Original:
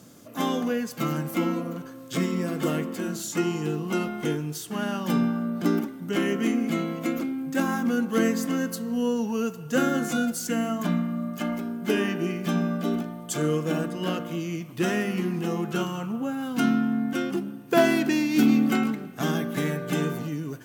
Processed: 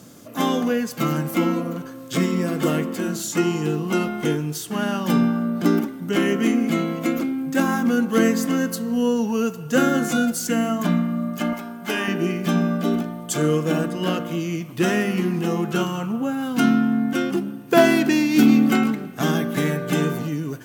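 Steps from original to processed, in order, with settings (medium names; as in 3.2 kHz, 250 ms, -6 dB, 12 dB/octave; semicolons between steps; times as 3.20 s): 11.53–12.08 s: resonant low shelf 570 Hz -7.5 dB, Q 1.5; trim +5 dB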